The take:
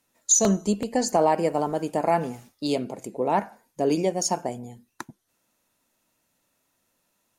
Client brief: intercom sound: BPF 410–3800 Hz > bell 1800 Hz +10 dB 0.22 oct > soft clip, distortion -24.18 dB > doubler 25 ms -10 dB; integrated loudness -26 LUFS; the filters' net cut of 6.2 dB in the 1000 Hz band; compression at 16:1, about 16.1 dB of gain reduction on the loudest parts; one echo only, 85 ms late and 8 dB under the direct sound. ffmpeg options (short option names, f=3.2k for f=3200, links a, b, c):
-filter_complex "[0:a]equalizer=f=1k:t=o:g=-8.5,acompressor=threshold=-31dB:ratio=16,highpass=410,lowpass=3.8k,equalizer=f=1.8k:t=o:w=0.22:g=10,aecho=1:1:85:0.398,asoftclip=threshold=-24.5dB,asplit=2[a][b];[b]adelay=25,volume=-10dB[c];[a][c]amix=inputs=2:normalize=0,volume=15dB"